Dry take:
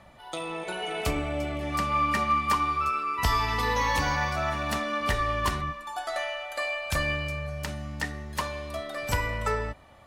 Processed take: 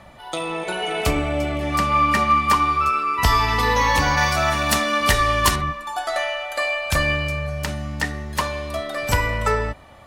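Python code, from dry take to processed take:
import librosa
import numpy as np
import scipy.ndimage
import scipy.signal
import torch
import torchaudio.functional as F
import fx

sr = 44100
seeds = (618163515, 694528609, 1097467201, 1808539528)

y = fx.high_shelf(x, sr, hz=3500.0, db=10.5, at=(4.17, 5.56))
y = y * librosa.db_to_amplitude(7.5)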